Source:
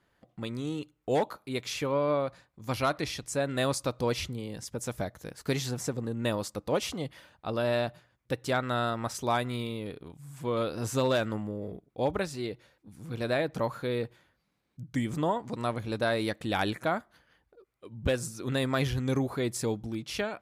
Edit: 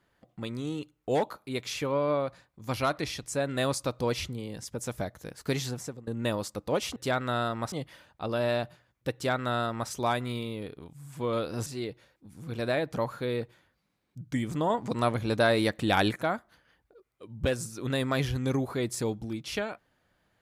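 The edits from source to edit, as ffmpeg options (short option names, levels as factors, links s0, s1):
-filter_complex "[0:a]asplit=7[s0][s1][s2][s3][s4][s5][s6];[s0]atrim=end=6.07,asetpts=PTS-STARTPTS,afade=t=out:st=5.65:d=0.42:silence=0.112202[s7];[s1]atrim=start=6.07:end=6.962,asetpts=PTS-STARTPTS,afade=t=in:d=0.004:c=hsin:silence=0.112202[s8];[s2]atrim=start=8.378:end=9.142[s9];[s3]atrim=start=6.958:end=10.902[s10];[s4]atrim=start=12.278:end=15.322[s11];[s5]atrim=start=15.318:end=16.782,asetpts=PTS-STARTPTS,volume=1.68[s12];[s6]atrim=start=16.778[s13];[s7][s8]concat=n=2:v=0:a=1[s14];[s14][s9]acrossfade=d=0.004:c1=hsin:c2=hsin[s15];[s15][s10]acrossfade=d=0.004:c1=hsin:c2=hsin[s16];[s16][s11]acrossfade=d=0.004:c1=hsin:c2=hsin[s17];[s17][s12]acrossfade=d=0.004:c1=hsin:c2=hsin[s18];[s18][s13]acrossfade=d=0.004:c1=hsin:c2=hsin"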